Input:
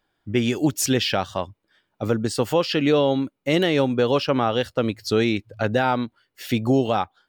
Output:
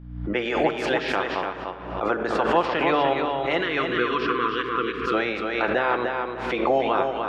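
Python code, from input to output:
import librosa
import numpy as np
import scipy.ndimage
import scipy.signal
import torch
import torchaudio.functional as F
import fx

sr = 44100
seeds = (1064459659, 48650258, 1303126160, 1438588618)

y = fx.spec_clip(x, sr, under_db=17)
y = scipy.signal.sosfilt(scipy.signal.butter(2, 1600.0, 'lowpass', fs=sr, output='sos'), y)
y = fx.spec_box(y, sr, start_s=3.57, length_s=1.57, low_hz=500.0, high_hz=1000.0, gain_db=-28)
y = scipy.signal.sosfilt(scipy.signal.butter(2, 380.0, 'highpass', fs=sr, output='sos'), y)
y = fx.add_hum(y, sr, base_hz=60, snr_db=22)
y = fx.echo_feedback(y, sr, ms=296, feedback_pct=16, wet_db=-5.0)
y = fx.room_shoebox(y, sr, seeds[0], volume_m3=2100.0, walls='mixed', distance_m=0.79)
y = fx.pre_swell(y, sr, db_per_s=57.0)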